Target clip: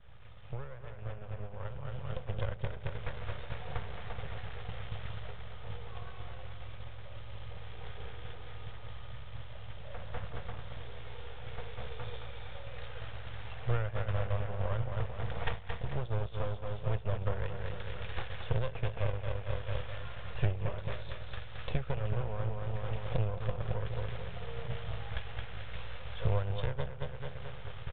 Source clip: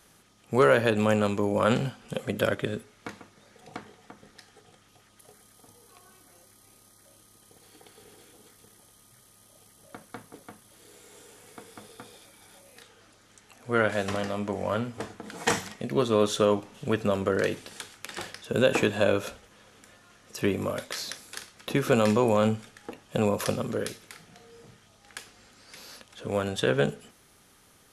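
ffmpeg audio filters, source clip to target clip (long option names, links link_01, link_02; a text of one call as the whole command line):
ffmpeg -i in.wav -af "aeval=exprs='val(0)+0.5*0.0188*sgn(val(0))':channel_layout=same,aecho=1:1:220|440|660|880|1100|1320:0.531|0.271|0.138|0.0704|0.0359|0.0183,acompressor=threshold=-33dB:ratio=20,aeval=exprs='val(0)+0.00316*(sin(2*PI*60*n/s)+sin(2*PI*2*60*n/s)/2+sin(2*PI*3*60*n/s)/3+sin(2*PI*4*60*n/s)/4+sin(2*PI*5*60*n/s)/5)':channel_layout=same,aeval=exprs='max(val(0),0)':channel_layout=same,equalizer=frequency=220:width_type=o:width=2.8:gain=5.5,aresample=8000,aresample=44100,firequalizer=gain_entry='entry(100,0);entry(240,-30);entry(500,-11)':delay=0.05:min_phase=1,agate=range=-33dB:threshold=-36dB:ratio=3:detection=peak,dynaudnorm=framelen=810:gausssize=5:maxgain=10dB,volume=8.5dB" out.wav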